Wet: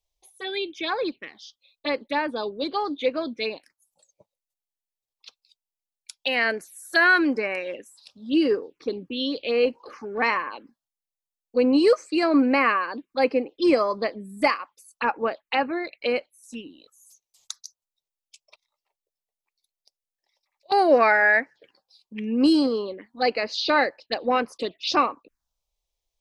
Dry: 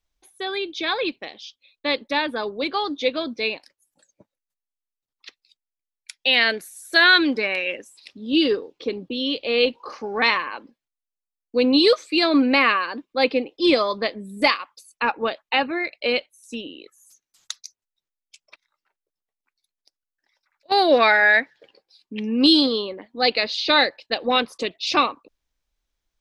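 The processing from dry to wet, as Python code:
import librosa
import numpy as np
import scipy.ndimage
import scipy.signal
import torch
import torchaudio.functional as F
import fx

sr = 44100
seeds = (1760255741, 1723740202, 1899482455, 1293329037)

y = fx.low_shelf(x, sr, hz=160.0, db=-5.0)
y = fx.env_phaser(y, sr, low_hz=250.0, high_hz=3600.0, full_db=-20.0)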